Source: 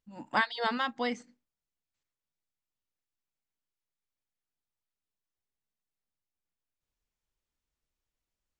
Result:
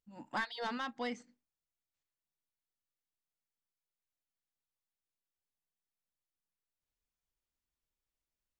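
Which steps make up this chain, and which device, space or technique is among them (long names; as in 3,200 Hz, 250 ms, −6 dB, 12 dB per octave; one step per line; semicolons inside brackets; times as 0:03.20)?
saturation between pre-emphasis and de-emphasis (high-shelf EQ 3,000 Hz +7.5 dB; soft clipping −21.5 dBFS, distortion −11 dB; high-shelf EQ 3,000 Hz −7.5 dB)
level −5.5 dB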